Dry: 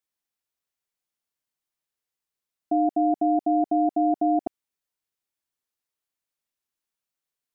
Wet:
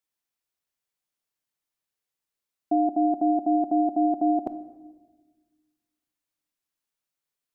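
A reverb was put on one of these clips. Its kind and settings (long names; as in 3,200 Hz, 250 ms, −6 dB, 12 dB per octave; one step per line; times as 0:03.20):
rectangular room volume 940 cubic metres, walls mixed, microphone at 0.38 metres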